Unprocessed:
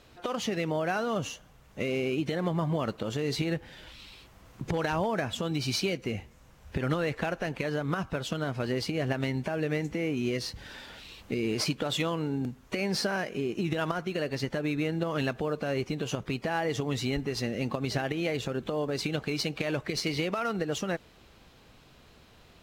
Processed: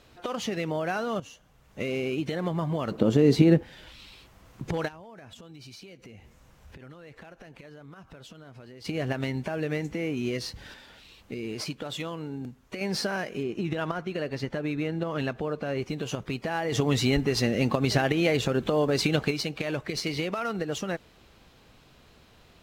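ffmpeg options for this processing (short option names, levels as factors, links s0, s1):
-filter_complex "[0:a]asettb=1/sr,asplit=3[s0][s1][s2];[s0]atrim=end=2.914[s3];[s1]atrim=start=2.91:end=3.63,asetpts=PTS-STARTPTS,afade=t=in:d=0.004:c=qsin,afade=t=out:st=0.716:d=0.004:c=qsin,equalizer=f=260:w=0.44:g=14[s4];[s2]atrim=start=3.626[s5];[s3][s4]acrossfade=d=0.004:c1=hsin:c2=qsin[s6];[s6][s5]acrossfade=d=0.004:c1=qsin:c2=hsin,asplit=3[s7][s8][s9];[s7]afade=t=out:st=4.87:d=0.02[s10];[s8]acompressor=threshold=0.00562:ratio=6:attack=3.2:release=140:knee=1:detection=peak,afade=t=in:st=4.87:d=0.02,afade=t=out:st=8.84:d=0.02[s11];[s9]afade=t=in:st=8.84:d=0.02[s12];[s10][s11][s12]amix=inputs=3:normalize=0,asettb=1/sr,asplit=3[s13][s14][s15];[s13]atrim=end=13.434[s16];[s14]atrim=start=13.43:end=15.82,asetpts=PTS-STARTPTS,afade=t=in:d=0.004:c=qsin,afade=t=out:st=2.386:d=0.004:c=qsin,highshelf=f=4900:g=-8.5[s17];[s15]atrim=start=15.816[s18];[s16][s17]acrossfade=d=0.004:c1=hsin:c2=qsin[s19];[s19][s18]acrossfade=d=0.004:c1=qsin:c2=hsin,asettb=1/sr,asplit=3[s20][s21][s22];[s20]atrim=end=16.724[s23];[s21]atrim=start=16.72:end=19.31,asetpts=PTS-STARTPTS,afade=t=in:d=0.004:c=qsin,afade=t=out:st=2.586:d=0.004:c=qsin,acontrast=65[s24];[s22]atrim=start=19.306[s25];[s23][s24]acrossfade=d=0.004:c1=hsin:c2=qsin[s26];[s26][s25]acrossfade=d=0.004:c1=qsin:c2=hsin,asplit=4[s27][s28][s29][s30];[s27]atrim=end=1.2,asetpts=PTS-STARTPTS,afade=t=out:st=1.196:d=0.004:c=hsin:silence=0.237137[s31];[s28]atrim=start=1.2:end=10.742,asetpts=PTS-STARTPTS,afade=t=in:d=0.62:silence=0.237137[s32];[s29]atrim=start=10.738:end=12.812,asetpts=PTS-STARTPTS,volume=0.562[s33];[s30]atrim=start=12.808[s34];[s31][s32]concat=n=2:v=0:a=1[s35];[s35][s33]acrossfade=d=0.004:c1=hsin:c2=hsin[s36];[s36][s34]acrossfade=d=0.004:c1=hsin:c2=hsin"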